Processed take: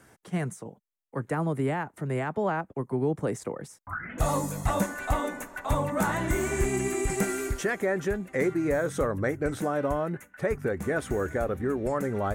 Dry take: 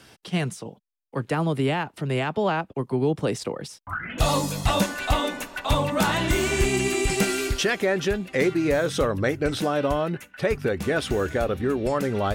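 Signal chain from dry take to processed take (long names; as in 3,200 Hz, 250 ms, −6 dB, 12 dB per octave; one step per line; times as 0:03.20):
flat-topped bell 3,700 Hz −12.5 dB 1.3 octaves
level −4 dB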